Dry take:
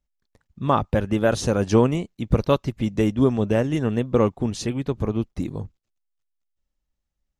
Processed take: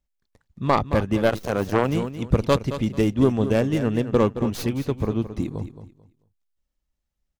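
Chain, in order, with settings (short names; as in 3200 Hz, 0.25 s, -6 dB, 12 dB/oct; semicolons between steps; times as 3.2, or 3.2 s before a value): tracing distortion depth 0.15 ms; feedback echo 0.22 s, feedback 24%, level -11.5 dB; 1.29–1.89 core saturation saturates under 880 Hz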